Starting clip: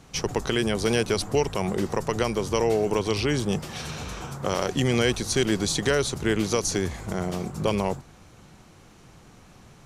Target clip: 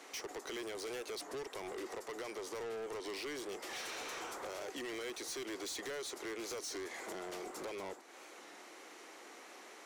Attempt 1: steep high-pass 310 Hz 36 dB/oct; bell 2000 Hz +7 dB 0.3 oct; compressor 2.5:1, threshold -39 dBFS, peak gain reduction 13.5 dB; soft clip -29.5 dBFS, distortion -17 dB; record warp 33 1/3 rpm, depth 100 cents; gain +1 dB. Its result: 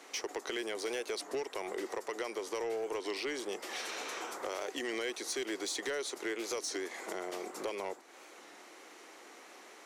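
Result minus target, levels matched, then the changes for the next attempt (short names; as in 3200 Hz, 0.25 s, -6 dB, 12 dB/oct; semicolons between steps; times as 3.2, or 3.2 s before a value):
soft clip: distortion -10 dB
change: soft clip -40.5 dBFS, distortion -7 dB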